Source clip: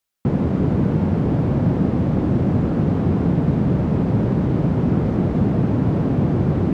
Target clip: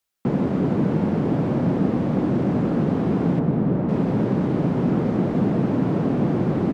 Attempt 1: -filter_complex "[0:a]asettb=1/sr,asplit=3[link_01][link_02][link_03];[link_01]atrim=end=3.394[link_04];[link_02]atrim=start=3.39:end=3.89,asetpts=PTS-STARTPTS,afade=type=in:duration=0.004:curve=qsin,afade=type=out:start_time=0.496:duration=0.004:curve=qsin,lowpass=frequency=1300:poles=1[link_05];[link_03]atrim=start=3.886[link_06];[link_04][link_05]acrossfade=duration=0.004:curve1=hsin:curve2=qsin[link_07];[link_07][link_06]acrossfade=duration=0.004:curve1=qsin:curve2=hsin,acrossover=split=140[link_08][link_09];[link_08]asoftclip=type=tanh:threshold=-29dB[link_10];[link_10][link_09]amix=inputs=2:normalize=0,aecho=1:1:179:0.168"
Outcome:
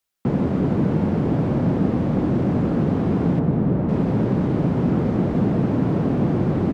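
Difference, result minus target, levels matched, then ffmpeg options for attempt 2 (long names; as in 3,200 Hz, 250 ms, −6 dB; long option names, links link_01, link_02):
soft clipping: distortion −4 dB
-filter_complex "[0:a]asettb=1/sr,asplit=3[link_01][link_02][link_03];[link_01]atrim=end=3.394[link_04];[link_02]atrim=start=3.39:end=3.89,asetpts=PTS-STARTPTS,afade=type=in:duration=0.004:curve=qsin,afade=type=out:start_time=0.496:duration=0.004:curve=qsin,lowpass=frequency=1300:poles=1[link_05];[link_03]atrim=start=3.886[link_06];[link_04][link_05]acrossfade=duration=0.004:curve1=hsin:curve2=qsin[link_07];[link_07][link_06]acrossfade=duration=0.004:curve1=qsin:curve2=hsin,acrossover=split=140[link_08][link_09];[link_08]asoftclip=type=tanh:threshold=-41dB[link_10];[link_10][link_09]amix=inputs=2:normalize=0,aecho=1:1:179:0.168"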